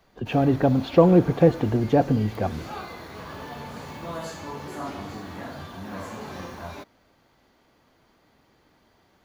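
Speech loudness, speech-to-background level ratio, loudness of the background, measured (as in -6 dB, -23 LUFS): -21.0 LUFS, 17.0 dB, -38.0 LUFS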